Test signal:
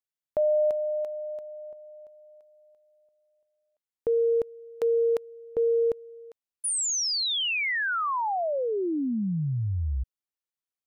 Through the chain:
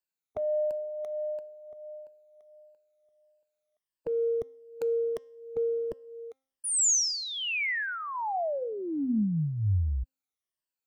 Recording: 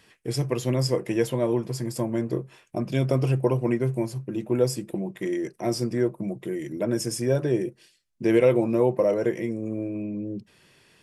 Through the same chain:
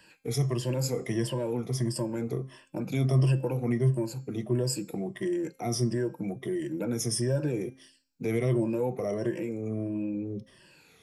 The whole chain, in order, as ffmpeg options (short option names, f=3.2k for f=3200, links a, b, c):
-filter_complex "[0:a]afftfilt=real='re*pow(10,14/40*sin(2*PI*(1.3*log(max(b,1)*sr/1024/100)/log(2)-(-1.5)*(pts-256)/sr)))':imag='im*pow(10,14/40*sin(2*PI*(1.3*log(max(b,1)*sr/1024/100)/log(2)-(-1.5)*(pts-256)/sr)))':win_size=1024:overlap=0.75,acrossover=split=220|5900[a][b][c];[b]acompressor=threshold=-29dB:ratio=2.5:attack=0.68:release=78:knee=2.83:detection=peak[d];[a][d][c]amix=inputs=3:normalize=0,bandreject=f=264.9:t=h:w=4,bandreject=f=529.8:t=h:w=4,bandreject=f=794.7:t=h:w=4,bandreject=f=1.0596k:t=h:w=4,bandreject=f=1.3245k:t=h:w=4,bandreject=f=1.5894k:t=h:w=4,bandreject=f=1.8543k:t=h:w=4,bandreject=f=2.1192k:t=h:w=4,bandreject=f=2.3841k:t=h:w=4,bandreject=f=2.649k:t=h:w=4,bandreject=f=2.9139k:t=h:w=4,bandreject=f=3.1788k:t=h:w=4,bandreject=f=3.4437k:t=h:w=4,bandreject=f=3.7086k:t=h:w=4,bandreject=f=3.9735k:t=h:w=4,bandreject=f=4.2384k:t=h:w=4,bandreject=f=4.5033k:t=h:w=4,bandreject=f=4.7682k:t=h:w=4,bandreject=f=5.0331k:t=h:w=4,bandreject=f=5.298k:t=h:w=4,bandreject=f=5.5629k:t=h:w=4,bandreject=f=5.8278k:t=h:w=4,bandreject=f=6.0927k:t=h:w=4,bandreject=f=6.3576k:t=h:w=4,bandreject=f=6.6225k:t=h:w=4,bandreject=f=6.8874k:t=h:w=4,bandreject=f=7.1523k:t=h:w=4,bandreject=f=7.4172k:t=h:w=4,bandreject=f=7.6821k:t=h:w=4,bandreject=f=7.947k:t=h:w=4,volume=-2dB"